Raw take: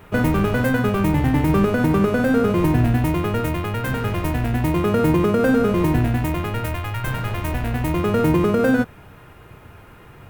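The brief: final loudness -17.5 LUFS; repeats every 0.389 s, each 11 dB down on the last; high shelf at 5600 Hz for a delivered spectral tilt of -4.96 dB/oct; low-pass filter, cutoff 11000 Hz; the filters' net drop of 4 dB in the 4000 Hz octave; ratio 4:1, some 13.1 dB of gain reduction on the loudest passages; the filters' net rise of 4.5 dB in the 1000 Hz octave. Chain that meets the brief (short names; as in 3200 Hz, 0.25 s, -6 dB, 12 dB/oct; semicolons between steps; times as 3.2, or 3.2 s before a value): LPF 11000 Hz; bell 1000 Hz +6 dB; bell 4000 Hz -5 dB; high shelf 5600 Hz -4.5 dB; compressor 4:1, threshold -29 dBFS; feedback echo 0.389 s, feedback 28%, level -11 dB; gain +13 dB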